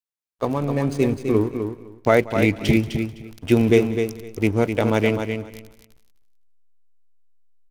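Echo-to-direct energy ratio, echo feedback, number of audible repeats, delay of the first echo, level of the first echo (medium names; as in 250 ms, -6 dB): -6.5 dB, no regular repeats, 5, 183 ms, -19.5 dB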